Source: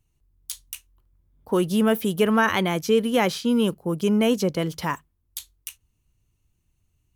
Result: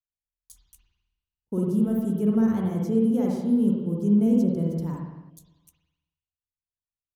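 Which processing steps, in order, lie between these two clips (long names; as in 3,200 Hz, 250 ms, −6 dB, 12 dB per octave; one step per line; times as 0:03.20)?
drawn EQ curve 200 Hz 0 dB, 2,600 Hz −29 dB, 6,700 Hz −12 dB
noise gate −48 dBFS, range −37 dB
spring reverb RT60 1.1 s, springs 49/53 ms, chirp 45 ms, DRR −2.5 dB
healed spectral selection 0:05.32–0:05.54, 780–3,300 Hz after
level −2.5 dB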